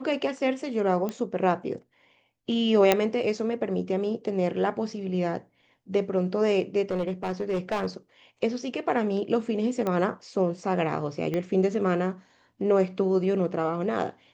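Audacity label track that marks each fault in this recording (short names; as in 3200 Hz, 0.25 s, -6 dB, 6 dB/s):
1.090000	1.090000	pop -18 dBFS
2.920000	2.920000	pop -5 dBFS
6.910000	7.860000	clipped -22.5 dBFS
9.870000	9.870000	pop -16 dBFS
11.340000	11.340000	pop -17 dBFS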